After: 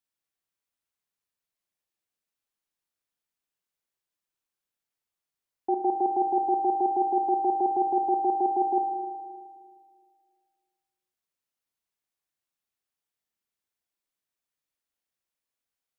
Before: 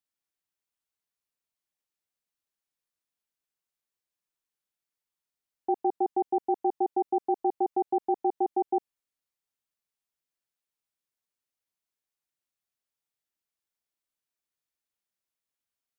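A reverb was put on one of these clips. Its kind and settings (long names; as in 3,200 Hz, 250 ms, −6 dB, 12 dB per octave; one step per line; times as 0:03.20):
spring reverb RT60 2 s, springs 38/52 ms, chirp 35 ms, DRR 4.5 dB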